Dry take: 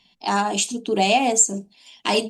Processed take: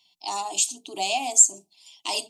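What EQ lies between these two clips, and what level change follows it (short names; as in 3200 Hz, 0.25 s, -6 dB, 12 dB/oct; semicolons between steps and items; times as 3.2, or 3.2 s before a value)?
tilt +3 dB/oct; fixed phaser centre 320 Hz, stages 8; -6.5 dB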